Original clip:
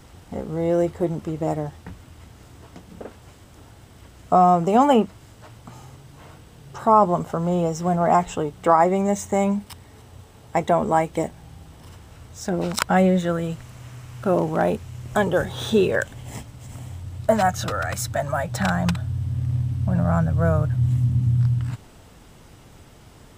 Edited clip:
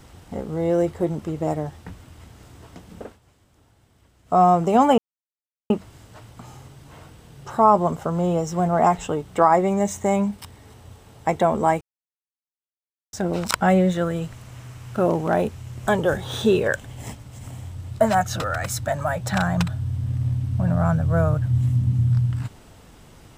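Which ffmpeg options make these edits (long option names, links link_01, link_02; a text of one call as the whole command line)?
ffmpeg -i in.wav -filter_complex "[0:a]asplit=6[link_01][link_02][link_03][link_04][link_05][link_06];[link_01]atrim=end=3.19,asetpts=PTS-STARTPTS,afade=type=out:start_time=3.04:duration=0.15:silence=0.251189[link_07];[link_02]atrim=start=3.19:end=4.25,asetpts=PTS-STARTPTS,volume=-12dB[link_08];[link_03]atrim=start=4.25:end=4.98,asetpts=PTS-STARTPTS,afade=type=in:duration=0.15:silence=0.251189,afade=type=out:start_time=0.726:duration=0.004:curve=hsin,apad=pad_dur=0.72[link_09];[link_04]atrim=start=4.98:end=11.09,asetpts=PTS-STARTPTS,afade=type=in:duration=0.004:curve=hsin,afade=type=out:start_time=6.106:duration=0.004:curve=hsin[link_10];[link_05]atrim=start=11.09:end=12.41,asetpts=PTS-STARTPTS,volume=0[link_11];[link_06]atrim=start=12.41,asetpts=PTS-STARTPTS,afade=type=in:duration=0.004:curve=hsin[link_12];[link_07][link_08][link_09][link_10][link_11][link_12]concat=n=6:v=0:a=1" out.wav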